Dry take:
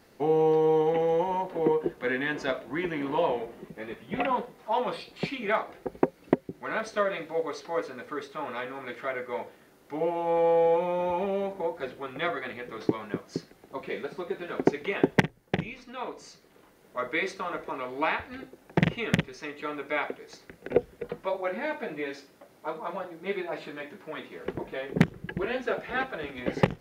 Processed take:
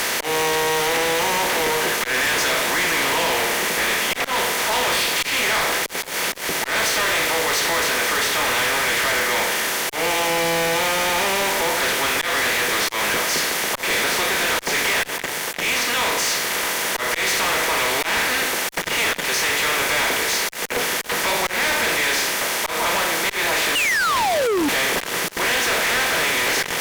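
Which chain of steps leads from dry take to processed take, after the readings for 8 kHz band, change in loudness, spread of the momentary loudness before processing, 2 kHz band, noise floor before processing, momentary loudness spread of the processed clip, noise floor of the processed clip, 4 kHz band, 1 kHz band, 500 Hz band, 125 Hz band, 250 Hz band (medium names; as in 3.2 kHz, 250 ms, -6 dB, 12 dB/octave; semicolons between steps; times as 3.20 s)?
no reading, +11.0 dB, 14 LU, +16.0 dB, -58 dBFS, 3 LU, -29 dBFS, +23.0 dB, +9.5 dB, +3.0 dB, -2.5 dB, +1.0 dB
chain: spectral levelling over time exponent 0.4; high-pass 110 Hz 12 dB/octave; differentiator; de-hum 147.1 Hz, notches 30; slow attack 164 ms; painted sound fall, 23.75–24.69 s, 270–3000 Hz -36 dBFS; fuzz box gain 47 dB, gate -56 dBFS; trim -5 dB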